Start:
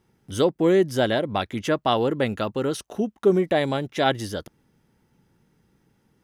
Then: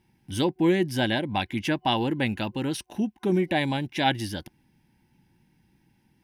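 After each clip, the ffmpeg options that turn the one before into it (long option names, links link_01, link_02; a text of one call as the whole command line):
ffmpeg -i in.wav -af "superequalizer=7b=0.282:8b=0.398:10b=0.282:12b=1.58:15b=0.562" out.wav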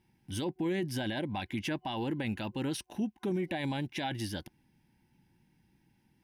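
ffmpeg -i in.wav -af "alimiter=limit=-21dB:level=0:latency=1:release=12,volume=-4.5dB" out.wav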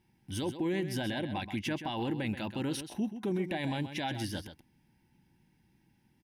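ffmpeg -i in.wav -af "aecho=1:1:130:0.299" out.wav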